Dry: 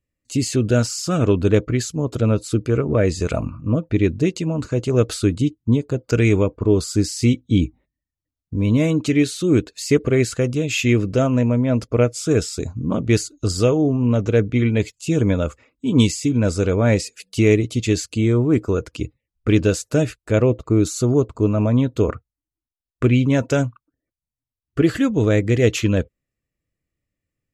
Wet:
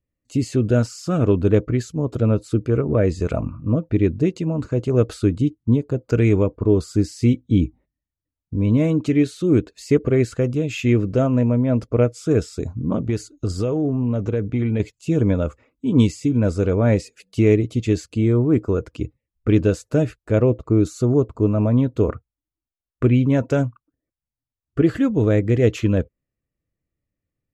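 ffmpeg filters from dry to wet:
-filter_complex "[0:a]asettb=1/sr,asplit=3[s0][s1][s2];[s0]atrim=end=12.964[s3];[s1]atrim=start=12.96:end=14.8,asetpts=PTS-STARTPTS,afade=t=in:d=0.004:c=qsin,afade=t=out:st=1.836:d=0.004:c=qsin,acompressor=threshold=0.158:ratio=5:attack=3.2:release=140:knee=1:detection=peak[s4];[s2]atrim=start=14.796[s5];[s3][s4]acrossfade=d=0.004:c1=hsin:c2=qsin[s6];[s6][s5]acrossfade=d=0.004:c1=qsin:c2=hsin,highshelf=f=2100:g=-11.5"

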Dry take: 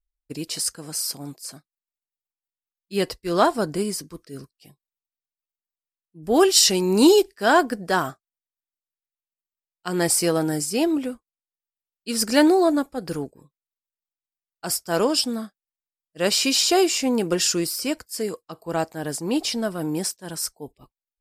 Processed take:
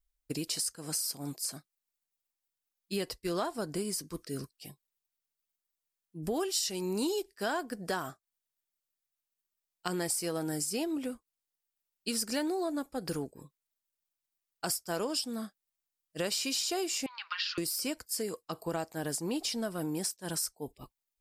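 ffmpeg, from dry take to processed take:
-filter_complex "[0:a]asettb=1/sr,asplit=3[s0][s1][s2];[s0]atrim=end=17.064[s3];[s1]atrim=start=17.06:end=17.58,asetpts=PTS-STARTPTS,afade=t=in:d=0.004:c=qsin,afade=t=out:st=0.516:d=0.004:c=qsin,asuperpass=centerf=2200:order=12:qfactor=0.62[s4];[s2]atrim=start=17.576[s5];[s3][s4]acrossfade=d=0.004:c1=hsin:c2=qsin[s6];[s6][s5]acrossfade=d=0.004:c1=qsin:c2=hsin,highshelf=f=4600:g=5.5,acompressor=threshold=0.02:ratio=5,volume=1.19"

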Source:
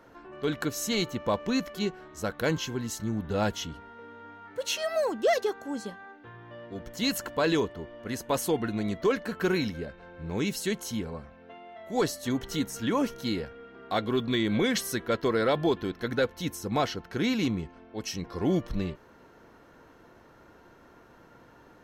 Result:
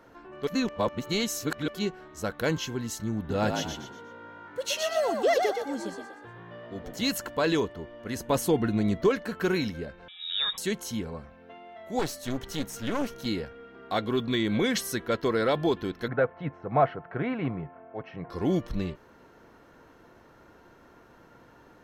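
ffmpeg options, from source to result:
-filter_complex "[0:a]asettb=1/sr,asplit=3[s0][s1][s2];[s0]atrim=end=3.174[s3];[s1]atrim=start=3.17:end=7.11,asetpts=PTS-STARTPTS,afade=t=in:d=0.004:c=qsin,afade=t=out:st=3.936:d=0.004:c=qsin,asplit=5[s4][s5][s6][s7][s8];[s5]adelay=121,afreqshift=56,volume=0.562[s9];[s6]adelay=242,afreqshift=112,volume=0.202[s10];[s7]adelay=363,afreqshift=168,volume=0.0733[s11];[s8]adelay=484,afreqshift=224,volume=0.0263[s12];[s4][s9][s10][s11][s12]amix=inputs=5:normalize=0,atrim=end_sample=173754[s13];[s2]atrim=start=7.106[s14];[s3][s13]acrossfade=d=0.004:c1=hsin:c2=qsin[s15];[s15][s14]acrossfade=d=0.004:c1=qsin:c2=hsin,asettb=1/sr,asplit=3[s16][s17][s18];[s16]atrim=end=8.164[s19];[s17]atrim=start=8.16:end=9.09,asetpts=PTS-STARTPTS,afade=t=in:d=0.004:c=qsin,afade=t=out:st=0.926:d=0.004:c=qsin,lowshelf=f=370:g=6.5[s20];[s18]atrim=start=9.086[s21];[s19][s20]acrossfade=d=0.004:c1=hsin:c2=qsin[s22];[s22][s21]acrossfade=d=0.004:c1=qsin:c2=hsin,asettb=1/sr,asplit=3[s23][s24][s25];[s23]atrim=end=10.084[s26];[s24]atrim=start=10.08:end=10.58,asetpts=PTS-STARTPTS,afade=t=in:d=0.004:c=qsin,afade=t=out:st=0.496:d=0.004:c=qsin,lowpass=f=3300:t=q:w=0.5098,lowpass=f=3300:t=q:w=0.6013,lowpass=f=3300:t=q:w=0.9,lowpass=f=3300:t=q:w=2.563,afreqshift=-3900[s27];[s25]atrim=start=10.576[s28];[s26][s27]acrossfade=d=0.004:c1=hsin:c2=qsin[s29];[s29][s28]acrossfade=d=0.004:c1=qsin:c2=hsin,asettb=1/sr,asplit=3[s30][s31][s32];[s30]atrim=end=11.994[s33];[s31]atrim=start=11.99:end=13.26,asetpts=PTS-STARTPTS,afade=t=in:d=0.004:c=qsin,afade=t=out:st=1.266:d=0.004:c=qsin,aeval=exprs='clip(val(0),-1,0.0112)':c=same[s34];[s32]atrim=start=13.256[s35];[s33][s34]acrossfade=d=0.004:c1=hsin:c2=qsin[s36];[s36][s35]acrossfade=d=0.004:c1=qsin:c2=hsin,asettb=1/sr,asplit=3[s37][s38][s39];[s37]atrim=end=16.084[s40];[s38]atrim=start=16.08:end=18.3,asetpts=PTS-STARTPTS,afade=t=in:d=0.004:c=qsin,afade=t=out:st=2.216:d=0.004:c=qsin,highpass=120,equalizer=f=140:t=q:w=4:g=9,equalizer=f=210:t=q:w=4:g=-8,equalizer=f=320:t=q:w=4:g=-5,equalizer=f=670:t=q:w=4:g=10,equalizer=f=1200:t=q:w=4:g=4,lowpass=f=2100:w=0.5412,lowpass=f=2100:w=1.3066[s41];[s39]atrim=start=18.296[s42];[s40][s41]acrossfade=d=0.004:c1=hsin:c2=qsin[s43];[s43][s42]acrossfade=d=0.004:c1=qsin:c2=hsin,asplit=3[s44][s45][s46];[s44]atrim=end=0.472[s47];[s45]atrim=start=0.468:end=1.682,asetpts=PTS-STARTPTS,areverse[s48];[s46]atrim=start=1.678[s49];[s47][s48]acrossfade=d=0.004:c1=hsin:c2=hsin[s50];[s50][s49]acrossfade=d=0.004:c1=hsin:c2=hsin"

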